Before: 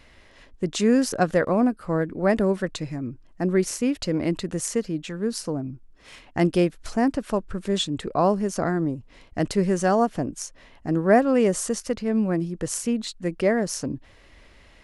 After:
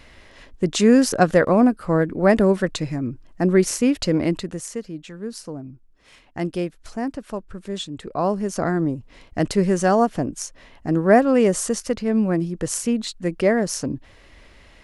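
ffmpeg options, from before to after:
-af "volume=13dB,afade=t=out:st=4.14:d=0.5:silence=0.316228,afade=t=in:st=7.97:d=0.83:silence=0.398107"

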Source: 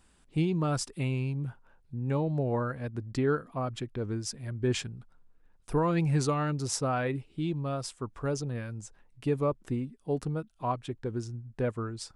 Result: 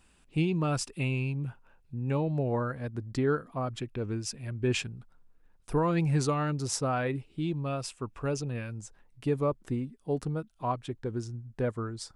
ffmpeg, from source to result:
-af "asetnsamples=n=441:p=0,asendcmd='2.48 equalizer g -2;3.8 equalizer g 9.5;4.85 equalizer g 1;7.66 equalizer g 10.5;8.72 equalizer g -1;11.65 equalizer g -7.5',equalizer=f=2.6k:t=o:w=0.23:g=8.5"

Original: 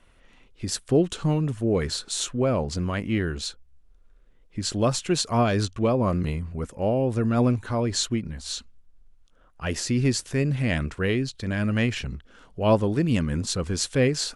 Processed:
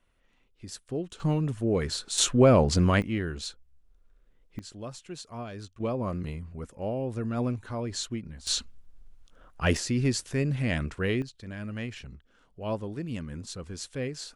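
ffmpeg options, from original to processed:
-af "asetnsamples=n=441:p=0,asendcmd='1.2 volume volume -3dB;2.18 volume volume 5dB;3.02 volume volume -5dB;4.59 volume volume -17dB;5.8 volume volume -8dB;8.47 volume volume 4dB;9.77 volume volume -3.5dB;11.22 volume volume -12dB',volume=-12.5dB"

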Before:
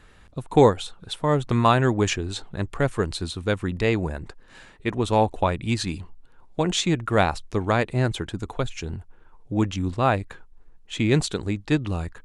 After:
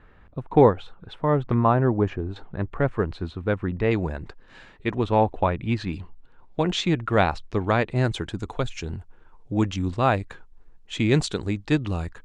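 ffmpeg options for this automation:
-af "asetnsamples=n=441:p=0,asendcmd='1.54 lowpass f 1100;2.36 lowpass f 1900;3.91 lowpass f 4600;5.04 lowpass f 2500;5.93 lowpass f 4200;7.96 lowpass f 7700',lowpass=1.9k"

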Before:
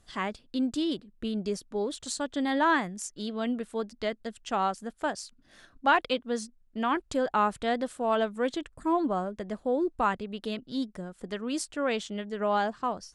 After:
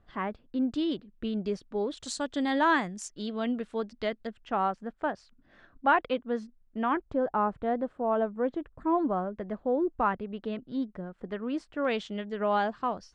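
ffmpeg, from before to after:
-af "asetnsamples=n=441:p=0,asendcmd='0.73 lowpass f 3300;1.97 lowpass f 7500;3.08 lowpass f 4300;4.27 lowpass f 2000;7.01 lowpass f 1100;8.75 lowpass f 1900;11.85 lowpass f 3900',lowpass=1.7k"

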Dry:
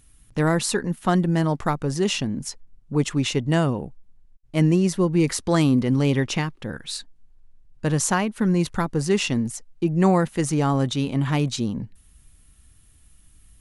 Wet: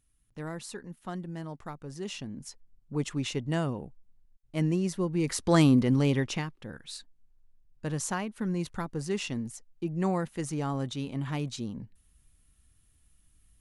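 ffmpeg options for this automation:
-af "volume=-1.5dB,afade=t=in:st=1.8:d=1.24:silence=0.375837,afade=t=in:st=5.22:d=0.37:silence=0.421697,afade=t=out:st=5.59:d=0.97:silence=0.354813"

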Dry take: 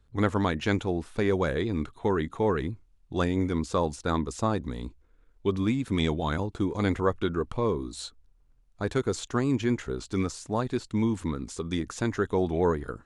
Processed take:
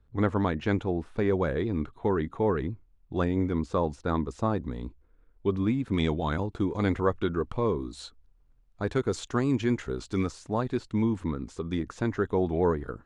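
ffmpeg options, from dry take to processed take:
-af "asetnsamples=n=441:p=0,asendcmd='5.94 lowpass f 3400;9.11 lowpass f 6200;10.29 lowpass f 3000;11.02 lowpass f 1900',lowpass=f=1.6k:p=1"

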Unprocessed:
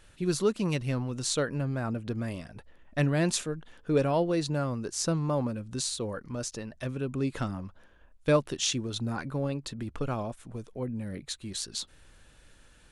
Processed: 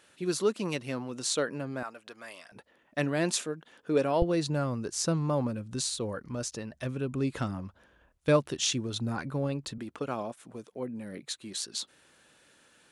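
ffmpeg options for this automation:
-af "asetnsamples=n=441:p=0,asendcmd='1.83 highpass f 840;2.52 highpass f 220;4.22 highpass f 57;9.78 highpass f 220',highpass=240"

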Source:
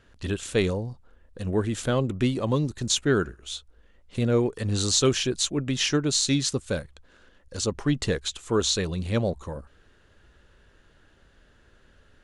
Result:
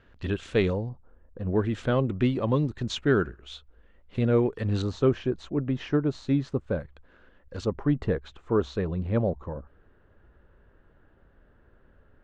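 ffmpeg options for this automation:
-af "asetnsamples=n=441:p=0,asendcmd='0.89 lowpass f 1200;1.56 lowpass f 2600;4.82 lowpass f 1200;6.8 lowpass f 2200;7.65 lowpass f 1300',lowpass=3k"

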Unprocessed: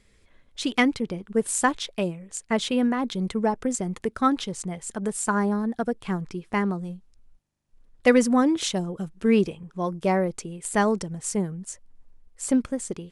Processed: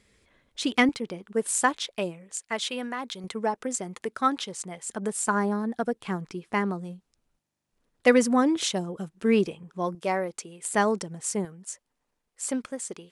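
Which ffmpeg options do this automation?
-af "asetnsamples=n=441:p=0,asendcmd='0.89 highpass f 390;2.35 highpass f 1100;3.24 highpass f 530;4.89 highpass f 220;9.95 highpass f 660;10.61 highpass f 270;11.45 highpass f 660',highpass=f=96:p=1"

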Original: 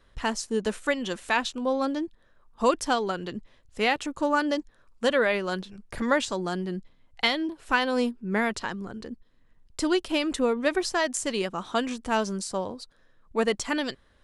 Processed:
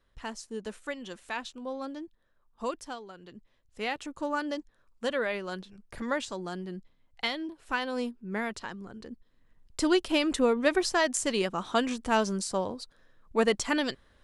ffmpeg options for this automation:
-af "volume=8dB,afade=t=out:st=2.64:d=0.44:silence=0.398107,afade=t=in:st=3.08:d=1.02:silence=0.266073,afade=t=in:st=8.9:d=1.01:silence=0.446684"

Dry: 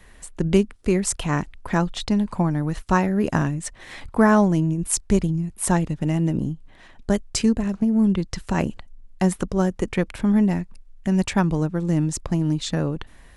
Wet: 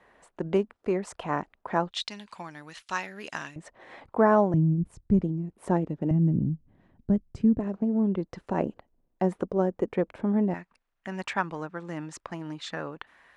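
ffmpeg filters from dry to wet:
-af "asetnsamples=n=441:p=0,asendcmd='1.91 bandpass f 3400;3.56 bandpass f 620;4.54 bandpass f 140;5.21 bandpass f 420;6.11 bandpass f 150;7.59 bandpass f 510;10.54 bandpass f 1400',bandpass=f=740:t=q:w=1:csg=0"

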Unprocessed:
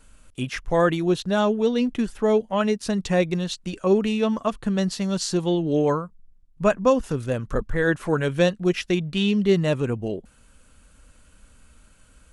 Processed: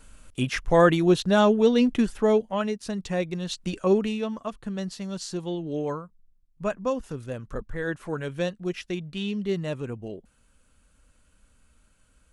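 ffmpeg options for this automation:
-af "volume=9.5dB,afade=t=out:st=1.97:d=0.74:silence=0.375837,afade=t=in:st=3.39:d=0.26:silence=0.421697,afade=t=out:st=3.65:d=0.64:silence=0.334965"

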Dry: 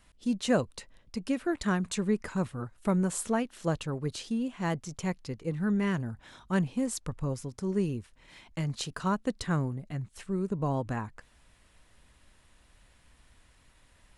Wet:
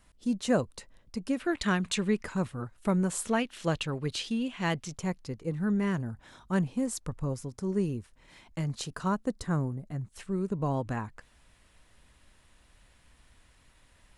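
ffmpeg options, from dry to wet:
-af "asetnsamples=n=441:p=0,asendcmd='1.4 equalizer g 8;2.23 equalizer g 1;3.29 equalizer g 8.5;4.95 equalizer g -3.5;9.25 equalizer g -9.5;10.12 equalizer g 0.5',equalizer=f=2.9k:t=o:w=1.5:g=-3.5"

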